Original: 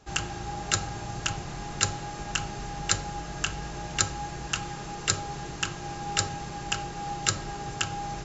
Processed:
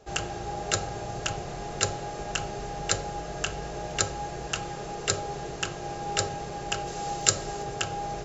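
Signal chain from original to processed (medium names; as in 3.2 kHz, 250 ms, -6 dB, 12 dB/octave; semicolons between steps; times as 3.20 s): high-order bell 530 Hz +9.5 dB 1.1 oct; crackle 22 per s -51 dBFS; 6.86–7.62 s: treble shelf 4.3 kHz -> 6.6 kHz +11 dB; trim -1.5 dB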